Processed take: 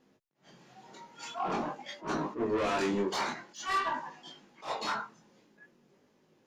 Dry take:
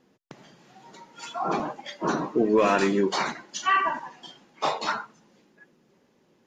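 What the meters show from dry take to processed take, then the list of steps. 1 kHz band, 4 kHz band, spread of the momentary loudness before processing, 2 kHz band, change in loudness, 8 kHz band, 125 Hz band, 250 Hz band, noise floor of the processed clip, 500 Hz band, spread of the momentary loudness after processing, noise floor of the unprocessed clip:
−7.0 dB, −5.5 dB, 14 LU, −7.5 dB, −7.5 dB, −6.5 dB, −7.0 dB, −8.0 dB, −69 dBFS, −8.5 dB, 19 LU, −65 dBFS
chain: soft clipping −23.5 dBFS, distortion −9 dB
chorus effect 0.48 Hz, delay 19 ms, depth 5.4 ms
level that may rise only so fast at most 200 dB per second

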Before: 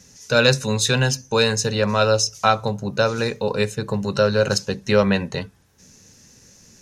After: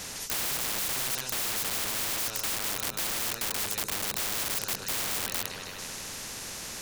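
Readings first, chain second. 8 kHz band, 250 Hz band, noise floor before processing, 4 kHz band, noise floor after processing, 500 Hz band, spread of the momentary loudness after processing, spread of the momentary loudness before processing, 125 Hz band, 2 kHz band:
−2.0 dB, −20.0 dB, −52 dBFS, −7.5 dB, −40 dBFS, −23.0 dB, 9 LU, 7 LU, −23.0 dB, −11.0 dB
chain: echo with a time of its own for lows and highs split 1,000 Hz, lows 108 ms, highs 156 ms, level −15 dB
sine wavefolder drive 17 dB, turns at −1 dBFS
background noise brown −35 dBFS
wrap-around overflow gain 3.5 dB
every bin compressed towards the loudest bin 4 to 1
level −7 dB

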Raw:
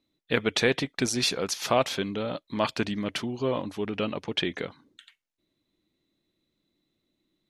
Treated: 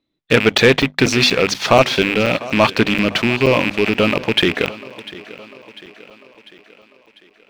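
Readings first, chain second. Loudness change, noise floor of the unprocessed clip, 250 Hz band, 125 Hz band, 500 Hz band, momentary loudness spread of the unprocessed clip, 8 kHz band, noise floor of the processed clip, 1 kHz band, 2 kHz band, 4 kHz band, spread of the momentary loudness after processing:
+13.0 dB, −81 dBFS, +12.5 dB, +13.5 dB, +12.5 dB, 8 LU, +6.0 dB, −56 dBFS, +12.0 dB, +15.5 dB, +12.0 dB, 10 LU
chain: loose part that buzzes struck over −40 dBFS, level −20 dBFS
low-pass filter 4,200 Hz 12 dB per octave
mains-hum notches 50/100/150/200/250 Hz
leveller curve on the samples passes 2
on a send: feedback echo with a high-pass in the loop 697 ms, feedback 56%, high-pass 150 Hz, level −18 dB
on the sum: regular buffer underruns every 0.24 s, samples 256, zero, from 0:00.58
level +6.5 dB

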